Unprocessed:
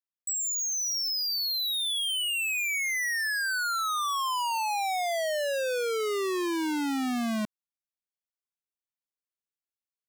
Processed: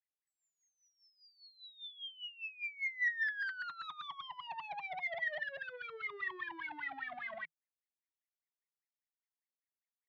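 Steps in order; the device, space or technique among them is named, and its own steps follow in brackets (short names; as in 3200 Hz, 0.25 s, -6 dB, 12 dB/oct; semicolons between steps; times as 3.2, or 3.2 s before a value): 3.06–4.47 thirty-one-band EQ 1000 Hz -8 dB, 1600 Hz +8 dB, 4000 Hz +11 dB; wah-wah guitar rig (wah 5 Hz 560–2200 Hz, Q 14; tube stage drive 43 dB, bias 0.2; speaker cabinet 89–3900 Hz, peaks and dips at 160 Hz +10 dB, 230 Hz -10 dB, 530 Hz -8 dB, 1300 Hz -4 dB, 1900 Hz +10 dB, 3400 Hz +6 dB); gain +5 dB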